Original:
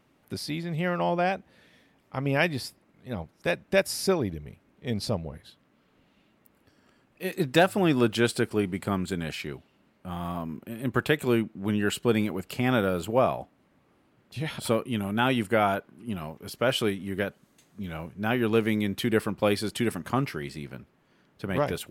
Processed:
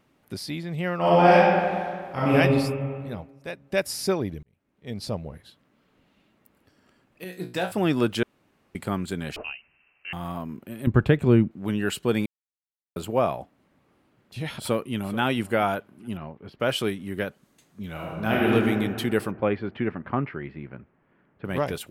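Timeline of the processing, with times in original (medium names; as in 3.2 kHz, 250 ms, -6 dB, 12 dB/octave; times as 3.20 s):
0.98–2.35 s: reverb throw, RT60 2 s, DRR -10 dB
3.09–3.86 s: dip -8.5 dB, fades 0.27 s
4.43–5.25 s: fade in
7.24–7.72 s: feedback comb 60 Hz, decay 0.3 s, mix 90%
8.23–8.75 s: room tone
9.36–10.13 s: frequency inversion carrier 2.9 kHz
10.87–11.51 s: RIAA curve playback
12.26–12.96 s: mute
14.60–15.21 s: echo throw 430 ms, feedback 15%, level -16.5 dB
16.17–16.60 s: distance through air 380 m
17.92–18.52 s: reverb throw, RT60 2.2 s, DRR -4 dB
19.31–21.45 s: low-pass 2.3 kHz 24 dB/octave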